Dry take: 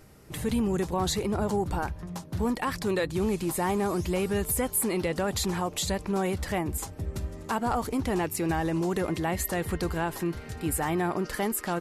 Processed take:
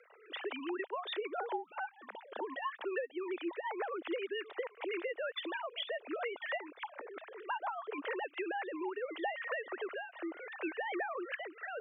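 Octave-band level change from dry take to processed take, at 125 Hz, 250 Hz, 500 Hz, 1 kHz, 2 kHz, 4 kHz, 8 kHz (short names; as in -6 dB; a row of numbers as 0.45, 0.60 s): under -40 dB, -15.5 dB, -9.0 dB, -8.5 dB, -3.5 dB, -7.5 dB, under -40 dB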